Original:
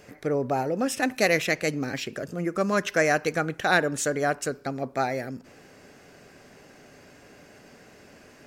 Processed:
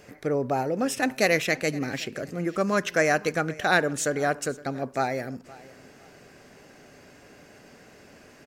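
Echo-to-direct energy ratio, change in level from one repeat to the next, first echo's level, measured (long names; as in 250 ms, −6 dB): −20.5 dB, −10.5 dB, −21.0 dB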